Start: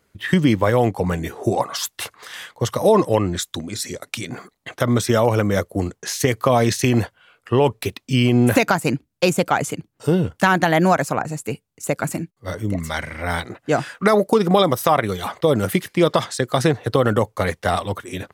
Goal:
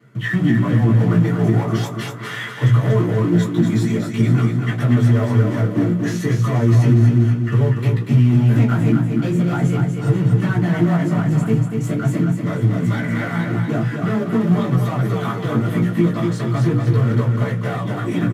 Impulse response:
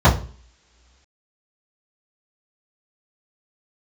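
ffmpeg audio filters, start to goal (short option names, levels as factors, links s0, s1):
-filter_complex "[0:a]bandreject=f=60:t=h:w=6,bandreject=f=120:t=h:w=6,bandreject=f=180:t=h:w=6,bandreject=f=240:t=h:w=6,bandreject=f=300:t=h:w=6,bandreject=f=360:t=h:w=6,bandreject=f=420:t=h:w=6,bandreject=f=480:t=h:w=6,bandreject=f=540:t=h:w=6,acompressor=threshold=0.0398:ratio=10,asoftclip=type=tanh:threshold=0.0282,flanger=delay=15.5:depth=2.7:speed=0.4,acrusher=bits=2:mode=log:mix=0:aa=0.000001,aecho=1:1:240|480|720|960|1200:0.562|0.236|0.0992|0.0417|0.0175[s0];[1:a]atrim=start_sample=2205,asetrate=83790,aresample=44100[s1];[s0][s1]afir=irnorm=-1:irlink=0,alimiter=level_in=0.562:limit=0.891:release=50:level=0:latency=1,volume=0.596"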